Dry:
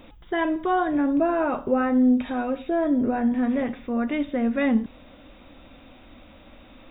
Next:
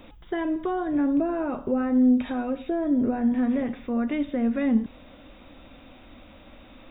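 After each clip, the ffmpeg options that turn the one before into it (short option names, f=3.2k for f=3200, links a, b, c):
-filter_complex "[0:a]acrossover=split=430[a][b];[b]acompressor=threshold=-34dB:ratio=3[c];[a][c]amix=inputs=2:normalize=0"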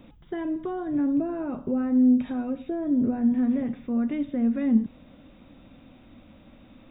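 -af "equalizer=f=160:t=o:w=1.9:g=11.5,volume=-7.5dB"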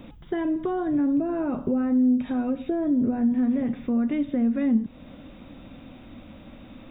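-af "acompressor=threshold=-31dB:ratio=2,volume=6.5dB"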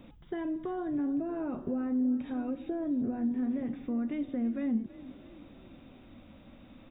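-filter_complex "[0:a]asplit=5[a][b][c][d][e];[b]adelay=326,afreqshift=33,volume=-18dB[f];[c]adelay=652,afreqshift=66,volume=-24.6dB[g];[d]adelay=978,afreqshift=99,volume=-31.1dB[h];[e]adelay=1304,afreqshift=132,volume=-37.7dB[i];[a][f][g][h][i]amix=inputs=5:normalize=0,volume=-8.5dB"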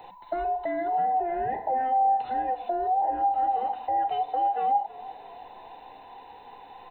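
-af "afftfilt=real='real(if(between(b,1,1008),(2*floor((b-1)/48)+1)*48-b,b),0)':imag='imag(if(between(b,1,1008),(2*floor((b-1)/48)+1)*48-b,b),0)*if(between(b,1,1008),-1,1)':win_size=2048:overlap=0.75,volume=6dB"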